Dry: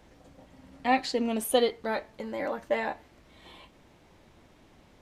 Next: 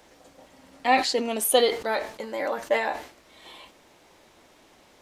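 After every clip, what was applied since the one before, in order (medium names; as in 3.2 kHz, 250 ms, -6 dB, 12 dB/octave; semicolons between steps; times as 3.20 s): tone controls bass -13 dB, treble +5 dB; decay stretcher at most 120 dB/s; trim +4.5 dB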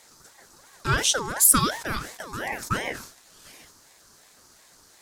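FFT filter 1.2 kHz 0 dB, 3 kHz -10 dB, 5.1 kHz +13 dB; ring modulator with a swept carrier 1 kHz, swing 40%, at 2.8 Hz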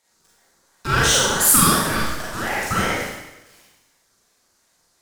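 waveshaping leveller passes 3; Schroeder reverb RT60 1 s, combs from 33 ms, DRR -5.5 dB; trim -9.5 dB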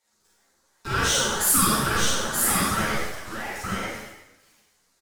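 delay 929 ms -3 dB; three-phase chorus; trim -2.5 dB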